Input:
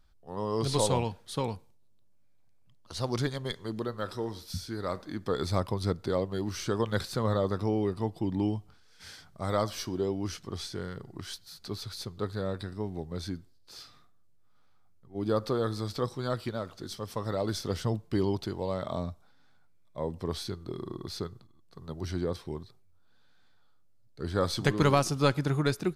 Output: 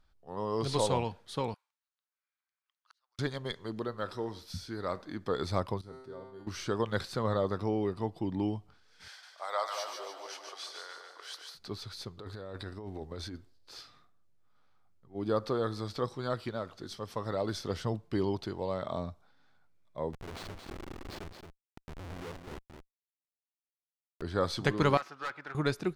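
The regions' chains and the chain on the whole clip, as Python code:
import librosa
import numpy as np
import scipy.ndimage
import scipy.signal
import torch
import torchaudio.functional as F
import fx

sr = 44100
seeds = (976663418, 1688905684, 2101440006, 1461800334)

y = fx.chain(x, sr, fx.ladder_highpass(hz=1100.0, resonance_pct=40),
    fx.gate_flip(shuts_db=-40.0, range_db=-33), at=(1.54, 3.19))
y = fx.chain(y, sr, fx.peak_eq(hz=3700.0, db=-6.5, octaves=2.2),
    fx.comb_fb(f0_hz=130.0, decay_s=0.97, harmonics='all', damping=0.0, mix_pct=90),
    fx.sustainer(db_per_s=67.0), at=(5.81, 6.47))
y = fx.chain(y, sr, fx.highpass(hz=640.0, slope=24),
    fx.echo_split(split_hz=780.0, low_ms=216, high_ms=147, feedback_pct=52, wet_db=-4.5), at=(9.08, 11.55))
y = fx.chain(y, sr, fx.peak_eq(hz=170.0, db=-9.0, octaves=0.38),
    fx.over_compress(threshold_db=-38.0, ratio=-1.0), at=(12.18, 13.81))
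y = fx.chain(y, sr, fx.schmitt(flips_db=-37.0),
    fx.echo_single(ms=223, db=-7.0), at=(20.13, 24.22))
y = fx.chain(y, sr, fx.self_delay(depth_ms=0.22),
    fx.bandpass_q(hz=1500.0, q=1.5),
    fx.overload_stage(gain_db=30.5), at=(24.97, 25.55))
y = fx.lowpass(y, sr, hz=3900.0, slope=6)
y = fx.low_shelf(y, sr, hz=330.0, db=-5.0)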